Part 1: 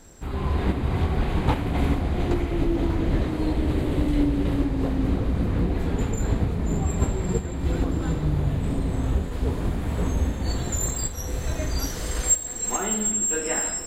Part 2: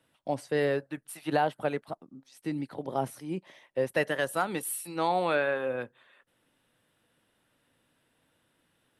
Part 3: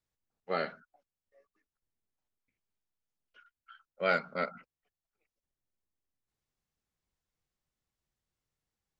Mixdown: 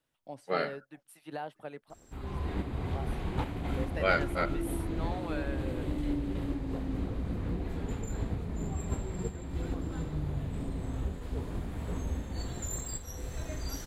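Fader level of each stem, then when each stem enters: -10.5 dB, -13.0 dB, +1.5 dB; 1.90 s, 0.00 s, 0.00 s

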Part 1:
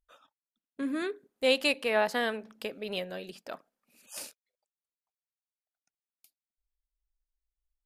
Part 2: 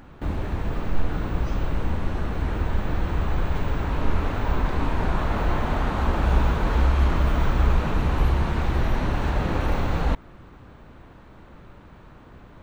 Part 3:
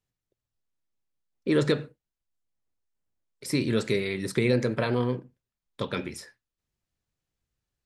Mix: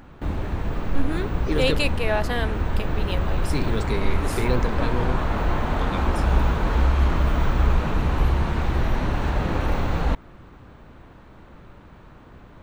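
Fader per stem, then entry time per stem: +2.0 dB, +0.5 dB, -2.5 dB; 0.15 s, 0.00 s, 0.00 s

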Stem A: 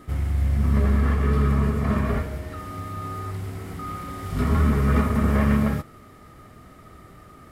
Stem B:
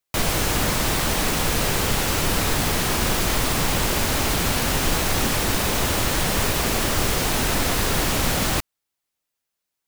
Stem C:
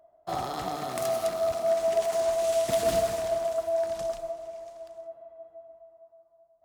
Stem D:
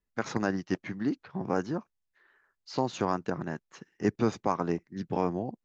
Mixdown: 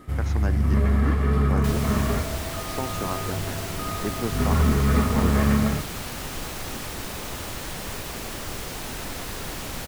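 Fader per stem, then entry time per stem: -0.5 dB, -11.5 dB, -15.5 dB, -3.0 dB; 0.00 s, 1.50 s, 0.60 s, 0.00 s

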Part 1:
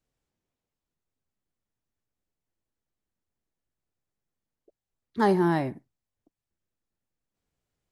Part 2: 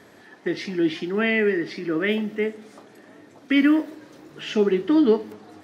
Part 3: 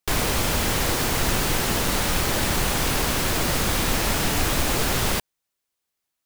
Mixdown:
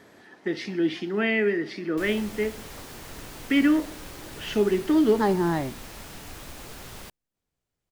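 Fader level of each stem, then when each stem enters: -1.0 dB, -2.5 dB, -19.0 dB; 0.00 s, 0.00 s, 1.90 s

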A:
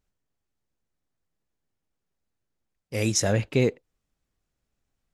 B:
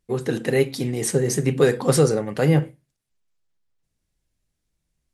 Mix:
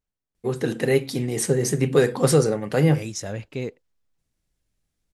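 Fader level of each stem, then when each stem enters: -8.0 dB, -0.5 dB; 0.00 s, 0.35 s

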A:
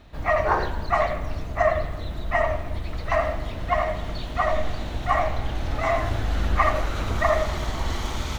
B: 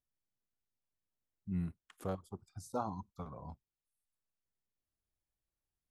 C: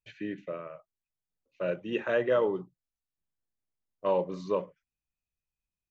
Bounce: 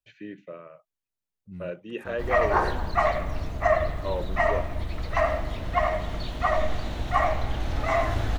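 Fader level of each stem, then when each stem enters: -1.0 dB, -4.5 dB, -3.5 dB; 2.05 s, 0.00 s, 0.00 s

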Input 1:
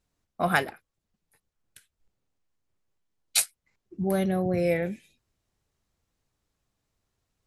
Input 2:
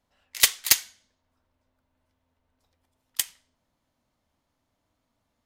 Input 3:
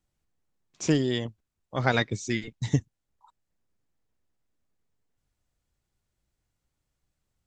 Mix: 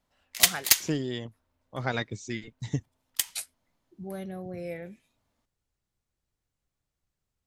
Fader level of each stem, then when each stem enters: -12.0 dB, -1.5 dB, -6.0 dB; 0.00 s, 0.00 s, 0.00 s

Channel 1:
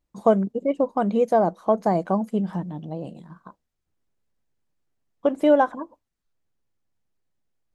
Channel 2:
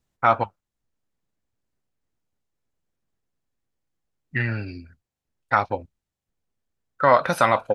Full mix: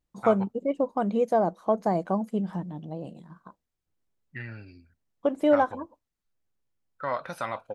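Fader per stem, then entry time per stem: -4.0 dB, -14.0 dB; 0.00 s, 0.00 s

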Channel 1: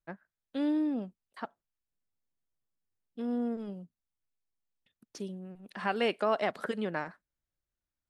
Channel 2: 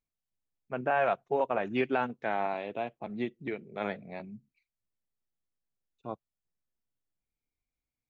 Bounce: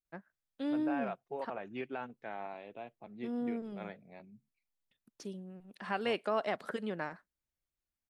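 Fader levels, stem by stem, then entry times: -4.0 dB, -11.5 dB; 0.05 s, 0.00 s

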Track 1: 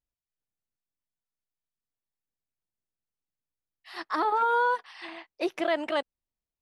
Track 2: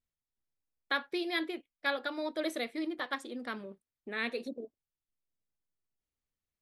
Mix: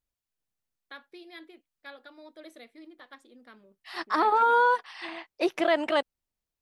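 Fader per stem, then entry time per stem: +3.0 dB, -13.5 dB; 0.00 s, 0.00 s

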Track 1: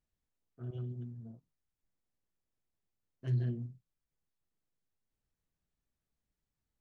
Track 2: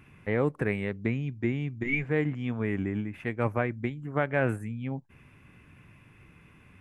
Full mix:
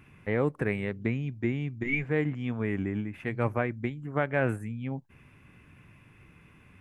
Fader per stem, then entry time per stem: -12.0 dB, -0.5 dB; 0.00 s, 0.00 s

